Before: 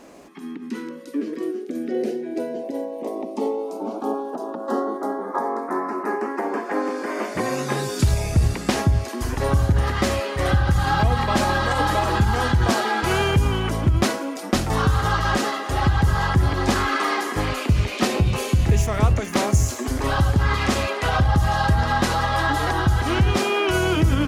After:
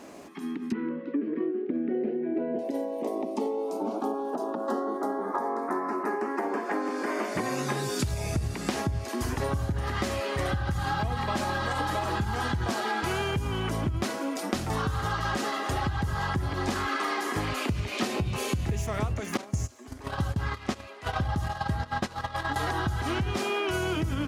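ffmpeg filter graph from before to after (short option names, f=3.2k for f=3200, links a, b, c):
-filter_complex "[0:a]asettb=1/sr,asplit=3[a][b][c];[a]atrim=end=0.724[d];[b]atrim=start=0.72:end=2.59,asetpts=PTS-STARTPTS,afade=t=in:d=0.004:c=qsin,afade=t=out:st=1.866:d=0.004:c=qsin,lowpass=f=2.5k:w=0.5412,lowpass=f=2.5k:w=1.3066,lowshelf=f=360:g=7.5[e];[c]atrim=start=2.586[f];[d][e]acrossfade=d=0.004:c1=hsin:c2=qsin[g];[g][f]acrossfade=d=0.004:c1=qsin:c2=hsin,asettb=1/sr,asplit=3[h][i][j];[h]atrim=end=19.374[k];[i]atrim=start=19.37:end=22.56,asetpts=PTS-STARTPTS,afade=t=in:d=0.004:c=qsin,afade=t=out:st=3.186:d=0.004:c=qsin,acrossover=split=8000[l][m];[m]acompressor=threshold=-42dB:ratio=4:attack=1:release=60[n];[l][n]amix=inputs=2:normalize=0,agate=range=-19dB:threshold=-20dB:ratio=16:release=100:detection=peak[o];[j]atrim=start=22.556[p];[k][o]acrossfade=d=0.004:c1=hsin:c2=qsin[q];[q][p]acrossfade=d=0.004:c1=qsin:c2=hsin,highpass=63,bandreject=f=510:w=16,acompressor=threshold=-26dB:ratio=6"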